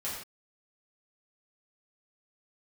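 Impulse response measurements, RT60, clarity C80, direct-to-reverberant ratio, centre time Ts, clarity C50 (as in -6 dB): no single decay rate, 5.0 dB, -8.5 dB, 50 ms, 2.0 dB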